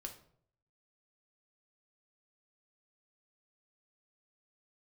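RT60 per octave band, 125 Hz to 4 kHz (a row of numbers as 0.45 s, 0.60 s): 0.85 s, 0.65 s, 0.65 s, 0.55 s, 0.45 s, 0.40 s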